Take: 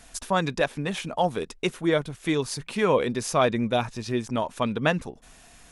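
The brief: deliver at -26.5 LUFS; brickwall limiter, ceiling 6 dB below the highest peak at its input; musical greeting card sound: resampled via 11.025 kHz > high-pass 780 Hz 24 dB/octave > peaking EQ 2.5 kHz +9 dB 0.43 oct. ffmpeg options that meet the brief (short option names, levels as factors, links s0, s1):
-af "alimiter=limit=0.178:level=0:latency=1,aresample=11025,aresample=44100,highpass=f=780:w=0.5412,highpass=f=780:w=1.3066,equalizer=f=2500:t=o:w=0.43:g=9,volume=1.68"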